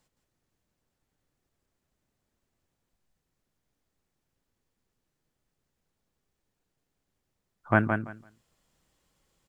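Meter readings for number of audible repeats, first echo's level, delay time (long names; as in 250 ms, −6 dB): 2, −6.0 dB, 168 ms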